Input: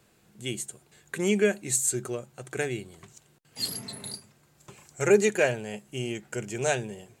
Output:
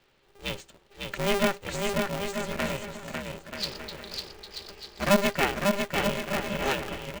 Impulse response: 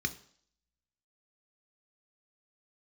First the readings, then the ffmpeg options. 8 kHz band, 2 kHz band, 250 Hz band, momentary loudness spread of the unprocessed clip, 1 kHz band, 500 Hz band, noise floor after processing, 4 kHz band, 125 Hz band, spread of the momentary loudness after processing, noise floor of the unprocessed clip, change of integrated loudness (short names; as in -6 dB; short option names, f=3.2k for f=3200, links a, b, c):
-8.5 dB, +2.0 dB, +1.0 dB, 16 LU, +8.0 dB, -2.5 dB, -63 dBFS, +4.5 dB, 0.0 dB, 15 LU, -63 dBFS, -0.5 dB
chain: -af "highpass=f=150:w=0.5412,highpass=f=150:w=1.3066,equalizer=f=500:t=q:w=4:g=-6,equalizer=f=880:t=q:w=4:g=-7,equalizer=f=3k:t=q:w=4:g=4,lowpass=f=4.8k:w=0.5412,lowpass=f=4.8k:w=1.3066,aecho=1:1:550|935|1204|1393|1525:0.631|0.398|0.251|0.158|0.1,aeval=exprs='val(0)*sgn(sin(2*PI*200*n/s))':c=same"